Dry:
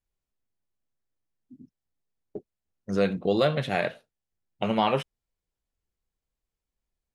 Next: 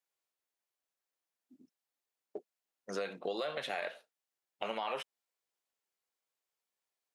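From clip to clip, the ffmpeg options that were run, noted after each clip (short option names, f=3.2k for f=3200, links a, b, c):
-af "highpass=560,alimiter=limit=-20dB:level=0:latency=1:release=33,acompressor=threshold=-37dB:ratio=3,volume=1.5dB"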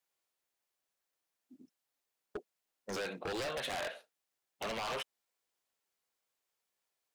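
-af "aeval=exprs='0.0168*(abs(mod(val(0)/0.0168+3,4)-2)-1)':c=same,volume=3.5dB"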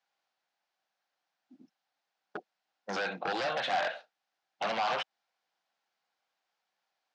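-af "highpass=f=150:w=0.5412,highpass=f=150:w=1.3066,equalizer=f=260:t=q:w=4:g=-4,equalizer=f=410:t=q:w=4:g=-8,equalizer=f=770:t=q:w=4:g=9,equalizer=f=1.5k:t=q:w=4:g=5,lowpass=f=5.4k:w=0.5412,lowpass=f=5.4k:w=1.3066,volume=4.5dB"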